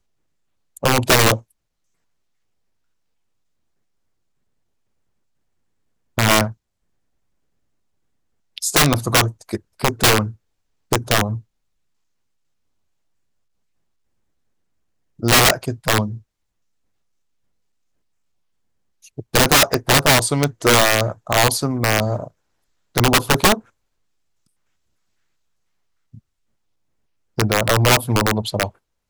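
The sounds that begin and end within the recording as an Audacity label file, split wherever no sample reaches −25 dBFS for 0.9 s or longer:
6.180000	6.490000	sound
8.580000	11.380000	sound
15.230000	16.150000	sound
19.190000	23.580000	sound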